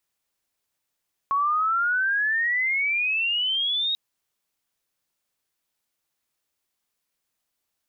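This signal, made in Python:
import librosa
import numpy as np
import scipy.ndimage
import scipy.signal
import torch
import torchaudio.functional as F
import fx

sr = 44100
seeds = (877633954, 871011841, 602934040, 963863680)

y = fx.chirp(sr, length_s=2.64, from_hz=1100.0, to_hz=3800.0, law='logarithmic', from_db=-19.5, to_db=-22.0)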